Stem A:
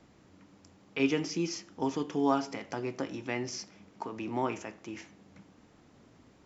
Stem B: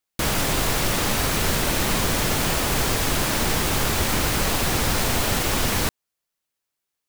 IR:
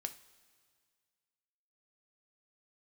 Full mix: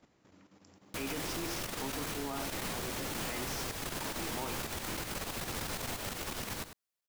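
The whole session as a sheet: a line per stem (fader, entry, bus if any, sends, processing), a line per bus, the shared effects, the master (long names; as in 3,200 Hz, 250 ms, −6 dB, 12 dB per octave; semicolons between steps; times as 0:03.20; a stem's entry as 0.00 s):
+0.5 dB, 0.00 s, send −20.5 dB, echo send −9.5 dB, low-shelf EQ 210 Hz −5.5 dB
−7.0 dB, 0.75 s, no send, echo send −16.5 dB, low-shelf EQ 81 Hz −6.5 dB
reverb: on, pre-delay 3 ms
echo: single-tap delay 90 ms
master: output level in coarse steps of 10 dB; brickwall limiter −28 dBFS, peak gain reduction 9.5 dB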